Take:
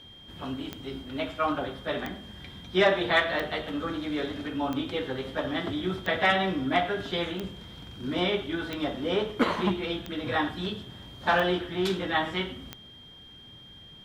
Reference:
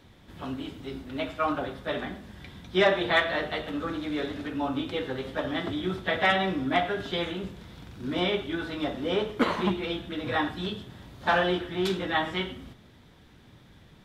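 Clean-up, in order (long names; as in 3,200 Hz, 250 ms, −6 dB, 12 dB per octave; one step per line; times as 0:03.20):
click removal
notch filter 3,200 Hz, Q 30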